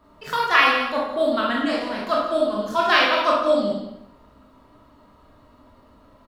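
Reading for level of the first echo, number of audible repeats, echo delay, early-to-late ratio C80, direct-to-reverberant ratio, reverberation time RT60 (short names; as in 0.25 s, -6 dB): -11.5 dB, 1, 0.174 s, 4.5 dB, -4.0 dB, 0.80 s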